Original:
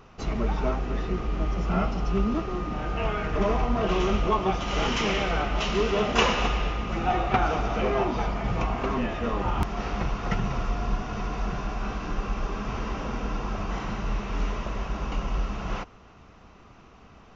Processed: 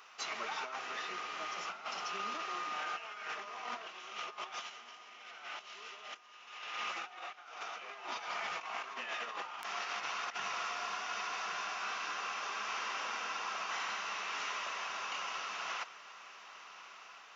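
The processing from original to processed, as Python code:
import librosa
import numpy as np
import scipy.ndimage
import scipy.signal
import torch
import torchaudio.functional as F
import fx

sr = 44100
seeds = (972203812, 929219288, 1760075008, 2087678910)

y = scipy.signal.sosfilt(scipy.signal.butter(2, 1300.0, 'highpass', fs=sr, output='sos'), x)
y = fx.high_shelf(y, sr, hz=3800.0, db=2.5)
y = fx.over_compress(y, sr, threshold_db=-40.0, ratio=-0.5)
y = fx.echo_diffused(y, sr, ms=1299, feedback_pct=41, wet_db=-15)
y = F.gain(torch.from_numpy(y), -1.5).numpy()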